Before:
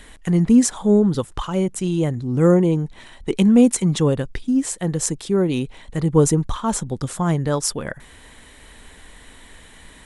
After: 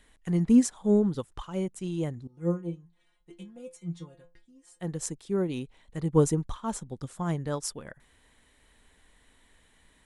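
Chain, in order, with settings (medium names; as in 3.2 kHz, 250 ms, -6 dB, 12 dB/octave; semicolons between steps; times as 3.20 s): 2.27–4.80 s: inharmonic resonator 170 Hz, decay 0.25 s, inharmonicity 0.002; upward expansion 1.5:1, over -33 dBFS; trim -5.5 dB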